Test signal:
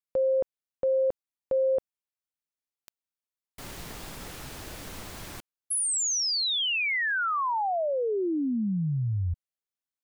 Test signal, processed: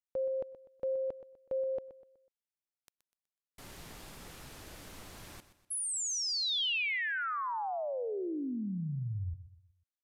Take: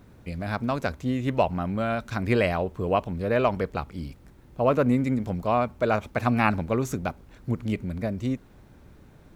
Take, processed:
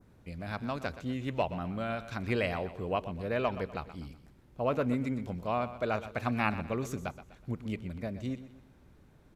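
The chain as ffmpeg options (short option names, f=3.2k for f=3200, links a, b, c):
-af "aecho=1:1:124|248|372|496:0.211|0.0845|0.0338|0.0135,adynamicequalizer=threshold=0.00562:dfrequency=3100:dqfactor=1:tfrequency=3100:tqfactor=1:attack=5:release=100:ratio=0.375:range=2:mode=boostabove:tftype=bell,aresample=32000,aresample=44100,volume=-8.5dB"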